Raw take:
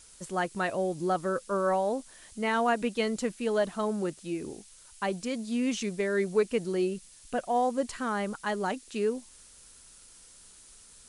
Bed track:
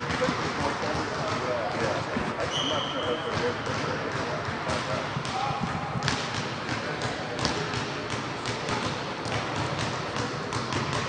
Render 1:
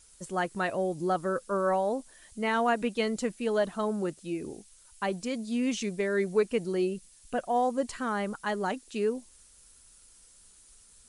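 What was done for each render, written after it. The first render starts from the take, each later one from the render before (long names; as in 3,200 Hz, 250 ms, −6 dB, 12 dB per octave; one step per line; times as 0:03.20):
broadband denoise 6 dB, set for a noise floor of −54 dBFS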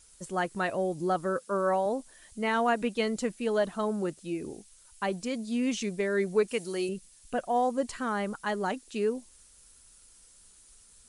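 0:01.37–0:01.86: high-pass filter 130 Hz
0:06.48–0:06.89: spectral tilt +2.5 dB per octave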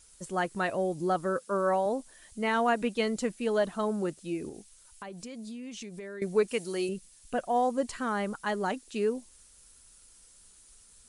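0:04.49–0:06.22: downward compressor 10 to 1, threshold −38 dBFS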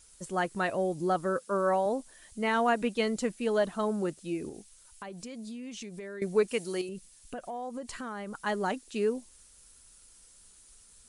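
0:06.81–0:08.35: downward compressor, threshold −35 dBFS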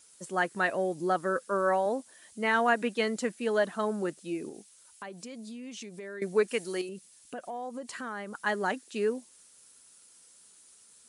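high-pass filter 190 Hz 12 dB per octave
dynamic equaliser 1,700 Hz, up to +6 dB, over −50 dBFS, Q 2.6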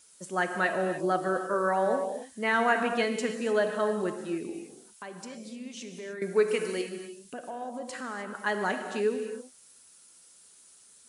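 reverb whose tail is shaped and stops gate 330 ms flat, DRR 5 dB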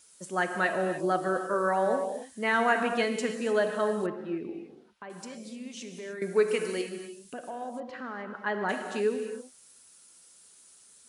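0:04.06–0:05.10: high-frequency loss of the air 340 metres
0:07.80–0:08.69: high-frequency loss of the air 280 metres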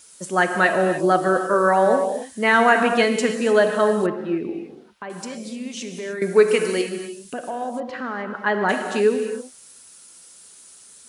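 level +9.5 dB
brickwall limiter −3 dBFS, peak gain reduction 1 dB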